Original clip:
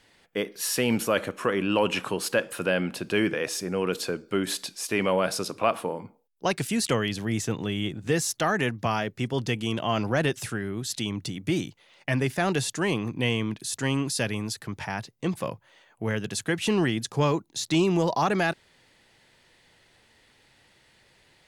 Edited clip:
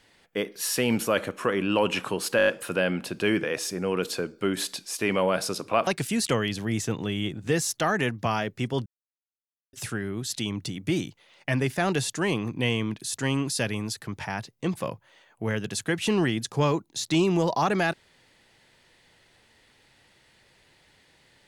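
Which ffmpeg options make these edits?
ffmpeg -i in.wav -filter_complex "[0:a]asplit=9[link_01][link_02][link_03][link_04][link_05][link_06][link_07][link_08][link_09];[link_01]atrim=end=2.392[link_10];[link_02]atrim=start=2.368:end=2.392[link_11];[link_03]atrim=start=2.368:end=2.392[link_12];[link_04]atrim=start=2.368:end=2.392[link_13];[link_05]atrim=start=2.368:end=2.392[link_14];[link_06]atrim=start=2.368:end=5.772[link_15];[link_07]atrim=start=6.468:end=9.46,asetpts=PTS-STARTPTS,afade=type=out:start_time=2.988:duration=0.004:curve=hsin[link_16];[link_08]atrim=start=9.46:end=10.33,asetpts=PTS-STARTPTS,volume=0[link_17];[link_09]atrim=start=10.33,asetpts=PTS-STARTPTS,afade=type=in:duration=0.004:curve=hsin[link_18];[link_10][link_11]acrossfade=duration=0.004:curve1=hsin:curve2=hsin[link_19];[link_19][link_12]acrossfade=duration=0.004:curve1=hsin:curve2=hsin[link_20];[link_20][link_13]acrossfade=duration=0.004:curve1=hsin:curve2=hsin[link_21];[link_21][link_14]acrossfade=duration=0.004:curve1=hsin:curve2=hsin[link_22];[link_22][link_15]acrossfade=duration=0.004:curve1=hsin:curve2=hsin[link_23];[link_16][link_17][link_18]concat=n=3:v=0:a=1[link_24];[link_23][link_24]acrossfade=duration=0.004:curve1=hsin:curve2=hsin" out.wav

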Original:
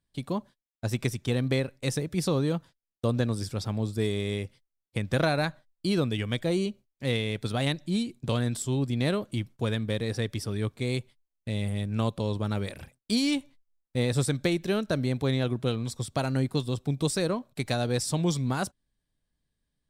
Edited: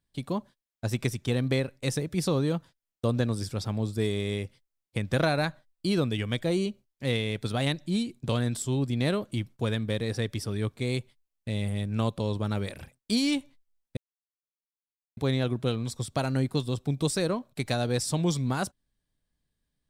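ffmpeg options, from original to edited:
ffmpeg -i in.wav -filter_complex "[0:a]asplit=3[link_01][link_02][link_03];[link_01]atrim=end=13.97,asetpts=PTS-STARTPTS,afade=type=out:start_time=13.966:duration=0.004:curve=hsin[link_04];[link_02]atrim=start=13.97:end=15.17,asetpts=PTS-STARTPTS,volume=0[link_05];[link_03]atrim=start=15.17,asetpts=PTS-STARTPTS,afade=type=in:duration=0.004:curve=hsin[link_06];[link_04][link_05][link_06]concat=n=3:v=0:a=1" out.wav

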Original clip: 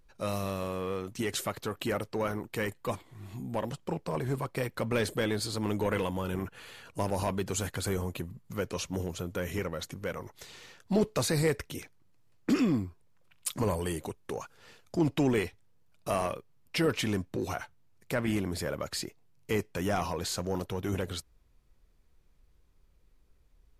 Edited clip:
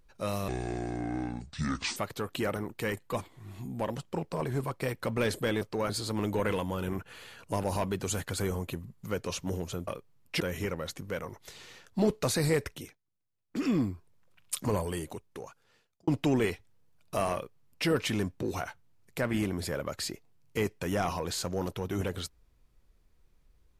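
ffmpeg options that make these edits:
ffmpeg -i in.wav -filter_complex "[0:a]asplit=11[link_01][link_02][link_03][link_04][link_05][link_06][link_07][link_08][link_09][link_10][link_11];[link_01]atrim=end=0.484[link_12];[link_02]atrim=start=0.48:end=1.43,asetpts=PTS-STARTPTS,asetrate=28224,aresample=44100[link_13];[link_03]atrim=start=1.426:end=2.022[link_14];[link_04]atrim=start=2.298:end=5.362[link_15];[link_05]atrim=start=2.018:end=2.302[link_16];[link_06]atrim=start=5.358:end=9.342[link_17];[link_07]atrim=start=16.278:end=16.812[link_18];[link_08]atrim=start=9.338:end=11.92,asetpts=PTS-STARTPTS,afade=type=out:start_time=2.322:duration=0.26:silence=0.1[link_19];[link_09]atrim=start=11.92:end=12.42,asetpts=PTS-STARTPTS,volume=-20dB[link_20];[link_10]atrim=start=12.42:end=15.01,asetpts=PTS-STARTPTS,afade=type=in:duration=0.26:silence=0.1,afade=type=out:start_time=1.22:duration=1.37[link_21];[link_11]atrim=start=15.01,asetpts=PTS-STARTPTS,afade=type=in:duration=0.004:curve=hsin[link_22];[link_12][link_13]acrossfade=duration=0.004:curve1=hsin:curve2=hsin[link_23];[link_23][link_14]acrossfade=duration=0.004:curve1=hsin:curve2=hsin[link_24];[link_24][link_15]acrossfade=duration=0.004:curve1=hsin:curve2=hsin[link_25];[link_25][link_16]acrossfade=duration=0.004:curve1=hsin:curve2=hsin[link_26];[link_26][link_17]acrossfade=duration=0.004:curve1=hsin:curve2=hsin[link_27];[link_27][link_18]acrossfade=duration=0.004:curve1=hsin:curve2=hsin[link_28];[link_19][link_20][link_21][link_22]concat=n=4:v=0:a=1[link_29];[link_28][link_29]acrossfade=duration=0.004:curve1=hsin:curve2=hsin" out.wav

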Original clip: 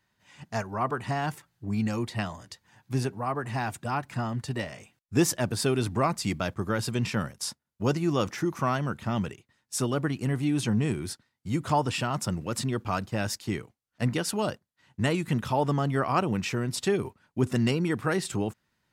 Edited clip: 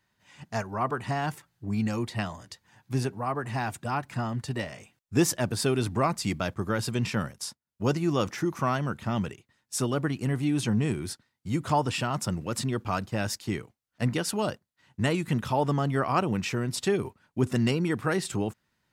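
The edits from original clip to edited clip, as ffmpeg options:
ffmpeg -i in.wav -filter_complex "[0:a]asplit=3[link_01][link_02][link_03];[link_01]atrim=end=7.6,asetpts=PTS-STARTPTS,afade=type=out:start_time=7.36:duration=0.24:silence=0.266073[link_04];[link_02]atrim=start=7.6:end=7.61,asetpts=PTS-STARTPTS,volume=-11.5dB[link_05];[link_03]atrim=start=7.61,asetpts=PTS-STARTPTS,afade=type=in:duration=0.24:silence=0.266073[link_06];[link_04][link_05][link_06]concat=n=3:v=0:a=1" out.wav

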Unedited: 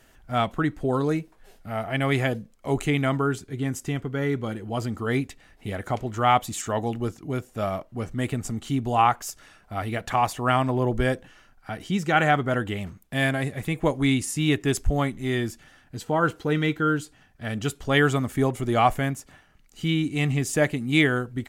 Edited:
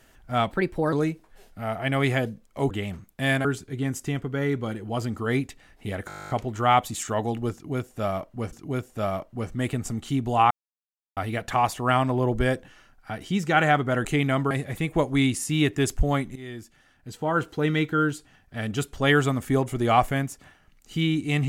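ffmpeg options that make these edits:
ffmpeg -i in.wav -filter_complex "[0:a]asplit=22[link_01][link_02][link_03][link_04][link_05][link_06][link_07][link_08][link_09][link_10][link_11][link_12][link_13][link_14][link_15][link_16][link_17][link_18][link_19][link_20][link_21][link_22];[link_01]atrim=end=0.514[link_23];[link_02]atrim=start=0.51:end=1.01,asetpts=PTS-STARTPTS,asetrate=52920,aresample=44100[link_24];[link_03]atrim=start=1.006:end=2.792[link_25];[link_04]atrim=start=12.638:end=13.382[link_26];[link_05]atrim=start=3.248:end=5.902[link_27];[link_06]atrim=start=5.878:end=5.902[link_28];[link_07]atrim=start=5.878:end=5.902[link_29];[link_08]atrim=start=5.878:end=5.902[link_30];[link_09]atrim=start=5.878:end=5.902[link_31];[link_10]atrim=start=5.878:end=5.902[link_32];[link_11]atrim=start=5.878:end=5.902[link_33];[link_12]atrim=start=5.878:end=5.902[link_34];[link_13]atrim=start=5.878:end=5.902[link_35];[link_14]atrim=start=5.878:end=5.902[link_36];[link_15]atrim=start=5.878:end=5.902[link_37];[link_16]atrim=start=5.878:end=8.112[link_38];[link_17]atrim=start=7.118:end=9.1,asetpts=PTS-STARTPTS,afade=type=out:start_time=1.978:duration=0.004:curve=hsin[link_39];[link_18]atrim=start=9.1:end=9.76,asetpts=PTS-STARTPTS,volume=0[link_40];[link_19]atrim=start=9.76:end=12.642,asetpts=PTS-STARTPTS,afade=type=in:duration=0.004:curve=hsin[link_41];[link_20]atrim=start=2.788:end=3.252[link_42];[link_21]atrim=start=13.378:end=15.23,asetpts=PTS-STARTPTS,afade=type=out:start_time=1.848:duration=0.004:curve=hsin:silence=0.158489[link_43];[link_22]atrim=start=15.23,asetpts=PTS-STARTPTS,afade=type=in:duration=1.31:silence=0.158489[link_44];[link_23][link_24]acrossfade=duration=0.004:curve1=hsin:curve2=hsin[link_45];[link_45][link_25]acrossfade=duration=0.004:curve1=hsin:curve2=hsin[link_46];[link_46][link_26]acrossfade=duration=0.004:curve1=hsin:curve2=hsin[link_47];[link_47][link_27]acrossfade=duration=0.004:curve1=hsin:curve2=hsin[link_48];[link_48][link_28]acrossfade=duration=0.004:curve1=hsin:curve2=hsin[link_49];[link_49][link_29]acrossfade=duration=0.004:curve1=hsin:curve2=hsin[link_50];[link_50][link_30]acrossfade=duration=0.004:curve1=hsin:curve2=hsin[link_51];[link_51][link_31]acrossfade=duration=0.004:curve1=hsin:curve2=hsin[link_52];[link_52][link_32]acrossfade=duration=0.004:curve1=hsin:curve2=hsin[link_53];[link_53][link_33]acrossfade=duration=0.004:curve1=hsin:curve2=hsin[link_54];[link_54][link_34]acrossfade=duration=0.004:curve1=hsin:curve2=hsin[link_55];[link_55][link_35]acrossfade=duration=0.004:curve1=hsin:curve2=hsin[link_56];[link_56][link_36]acrossfade=duration=0.004:curve1=hsin:curve2=hsin[link_57];[link_57][link_37]acrossfade=duration=0.004:curve1=hsin:curve2=hsin[link_58];[link_58][link_38]acrossfade=duration=0.004:curve1=hsin:curve2=hsin[link_59];[link_39][link_40][link_41]concat=n=3:v=0:a=1[link_60];[link_59][link_60]acrossfade=duration=0.004:curve1=hsin:curve2=hsin[link_61];[link_61][link_42]acrossfade=duration=0.004:curve1=hsin:curve2=hsin[link_62];[link_43][link_44]concat=n=2:v=0:a=1[link_63];[link_62][link_63]acrossfade=duration=0.004:curve1=hsin:curve2=hsin" out.wav

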